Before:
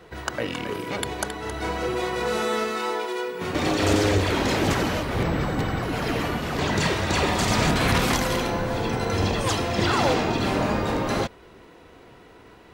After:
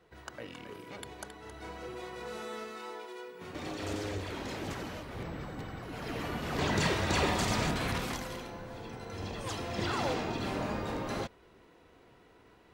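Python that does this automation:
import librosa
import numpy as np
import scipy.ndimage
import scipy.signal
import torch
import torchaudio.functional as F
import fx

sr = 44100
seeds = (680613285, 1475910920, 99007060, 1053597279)

y = fx.gain(x, sr, db=fx.line((5.82, -16.0), (6.61, -6.0), (7.26, -6.0), (8.5, -18.0), (9.07, -18.0), (9.75, -11.0)))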